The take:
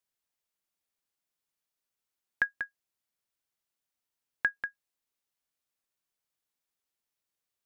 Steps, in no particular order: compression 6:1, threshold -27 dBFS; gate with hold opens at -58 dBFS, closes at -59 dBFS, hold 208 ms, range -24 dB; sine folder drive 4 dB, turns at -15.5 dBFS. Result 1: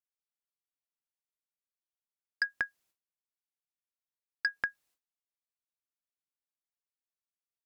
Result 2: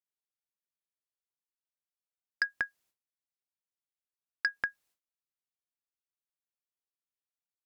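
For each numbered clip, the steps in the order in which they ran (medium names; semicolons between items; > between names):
sine folder > compression > gate with hold; gate with hold > sine folder > compression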